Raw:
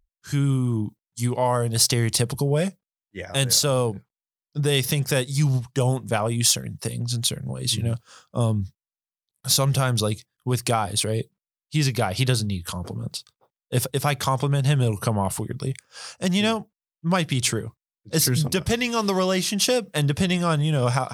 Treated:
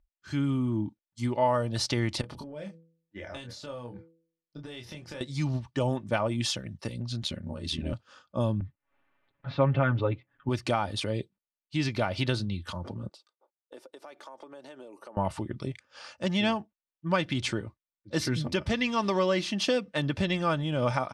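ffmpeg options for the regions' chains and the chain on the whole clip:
ffmpeg -i in.wav -filter_complex "[0:a]asettb=1/sr,asplit=3[link_01][link_02][link_03];[link_01]atrim=end=2.214[link_04];[link_02]atrim=start=2.21:end=5.21,asetpts=PTS-STARTPTS,afade=type=in:duration=0.004:curve=qsin,afade=type=out:start_time=2.996:duration=0.004:curve=qsin,bandreject=frequency=164.9:width_type=h:width=4,bandreject=frequency=329.8:width_type=h:width=4,bandreject=frequency=494.7:width_type=h:width=4,acompressor=threshold=-31dB:ratio=16:attack=3.2:release=140:knee=1:detection=peak,asplit=2[link_05][link_06];[link_06]adelay=25,volume=-5dB[link_07];[link_05][link_07]amix=inputs=2:normalize=0,atrim=end_sample=132300[link_08];[link_03]atrim=start=5.206[link_09];[link_04][link_08]acrossfade=duration=0.004:curve1=hsin:curve2=qsin[link_10];[link_10][link_09]acrossfade=duration=0.004:curve1=qsin:curve2=hsin,asettb=1/sr,asplit=3[link_11][link_12][link_13];[link_11]atrim=end=7.224[link_14];[link_12]atrim=start=7.22:end=7.93,asetpts=PTS-STARTPTS,afade=type=in:duration=0.004:curve=qsin,afade=type=out:start_time=0.706:duration=0.004:curve=qsin,aecho=1:1:5.6:0.75,atrim=end_sample=31311,aeval=exprs='val(0)*sin(2*PI*39*n/s)':channel_layout=same[link_15];[link_13]atrim=start=7.926[link_16];[link_14][link_15]acrossfade=duration=0.004:curve1=hsin:curve2=qsin[link_17];[link_17][link_16]acrossfade=duration=0.004:curve1=qsin:curve2=hsin,asettb=1/sr,asplit=3[link_18][link_19][link_20];[link_18]atrim=end=8.604[link_21];[link_19]atrim=start=8.6:end=10.49,asetpts=PTS-STARTPTS,afade=type=in:duration=0.004:curve=qsin,afade=type=out:start_time=1.886:duration=0.004:curve=qsin,acompressor=mode=upward:threshold=-37dB:ratio=2.5:attack=3.2:release=140:knee=2.83:detection=peak,lowpass=frequency=2400:width=0.5412,lowpass=frequency=2400:width=1.3066,aecho=1:1:7.2:0.8,atrim=end_sample=83349[link_22];[link_20]atrim=start=10.486[link_23];[link_21][link_22]acrossfade=duration=0.004:curve1=hsin:curve2=qsin[link_24];[link_24][link_23]acrossfade=duration=0.004:curve1=qsin:curve2=hsin,asettb=1/sr,asplit=3[link_25][link_26][link_27];[link_25]atrim=end=13.094[link_28];[link_26]atrim=start=13.09:end=15.17,asetpts=PTS-STARTPTS,afade=type=in:duration=0.004:curve=qsin,afade=type=out:start_time=2.076:duration=0.004:curve=qsin,highpass=frequency=330:width=0.5412,highpass=frequency=330:width=1.3066,equalizer=frequency=2900:width=0.54:gain=-10,acompressor=threshold=-38dB:ratio=6:attack=3.2:release=140:knee=1:detection=peak[link_29];[link_27]atrim=start=15.166[link_30];[link_28][link_29]acrossfade=duration=0.004:curve1=hsin:curve2=qsin[link_31];[link_31][link_30]acrossfade=duration=0.004:curve1=qsin:curve2=hsin,lowpass=3700,aecho=1:1:3.4:0.47,volume=-4.5dB" out.wav

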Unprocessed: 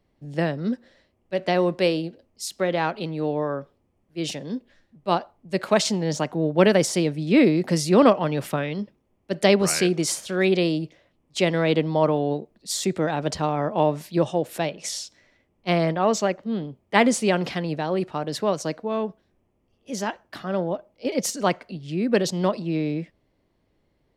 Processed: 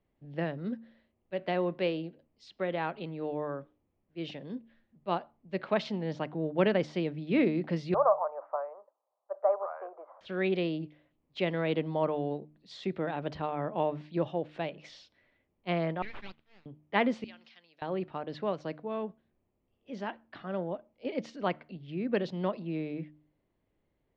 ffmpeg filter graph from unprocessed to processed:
ffmpeg -i in.wav -filter_complex "[0:a]asettb=1/sr,asplit=3[link_01][link_02][link_03];[link_01]atrim=end=7.944[link_04];[link_02]atrim=start=7.94:end=10.21,asetpts=PTS-STARTPTS,afade=type=in:duration=0.004:curve=qsin,afade=type=out:start_time=2.266:duration=0.004:curve=qsin,acontrast=36,asuperpass=centerf=830:order=8:qfactor=1.2[link_05];[link_03]atrim=start=10.206[link_06];[link_04][link_05]acrossfade=duration=0.004:curve1=hsin:curve2=qsin[link_07];[link_07][link_06]acrossfade=duration=0.004:curve1=qsin:curve2=hsin,asettb=1/sr,asplit=3[link_08][link_09][link_10];[link_08]atrim=end=16.024[link_11];[link_09]atrim=start=16.02:end=16.66,asetpts=PTS-STARTPTS,afade=type=in:duration=0.004:curve=qsin,afade=type=out:start_time=0.636:duration=0.004:curve=qsin,highpass=frequency=1100:width=0.5412,highpass=frequency=1100:width=1.3066,aeval=exprs='abs(val(0))':channel_layout=same[link_12];[link_10]atrim=start=16.656[link_13];[link_11][link_12]acrossfade=duration=0.004:curve1=hsin:curve2=qsin[link_14];[link_14][link_13]acrossfade=duration=0.004:curve1=qsin:curve2=hsin,asettb=1/sr,asplit=3[link_15][link_16][link_17];[link_15]atrim=end=17.244[link_18];[link_16]atrim=start=17.24:end=17.82,asetpts=PTS-STARTPTS,afade=type=in:duration=0.004:curve=qsin,afade=type=out:start_time=0.576:duration=0.004:curve=qsin,bandpass=frequency=6200:width_type=q:width=2.1,acompressor=mode=upward:threshold=-45dB:ratio=2.5:attack=3.2:release=140:knee=2.83:detection=peak[link_19];[link_17]atrim=start=17.816[link_20];[link_18][link_19]acrossfade=duration=0.004:curve1=hsin:curve2=qsin[link_21];[link_21][link_20]acrossfade=duration=0.004:curve1=qsin:curve2=hsin,lowpass=frequency=3500:width=0.5412,lowpass=frequency=3500:width=1.3066,bandreject=frequency=75.59:width_type=h:width=4,bandreject=frequency=151.18:width_type=h:width=4,bandreject=frequency=226.77:width_type=h:width=4,bandreject=frequency=302.36:width_type=h:width=4,volume=-9dB" out.wav

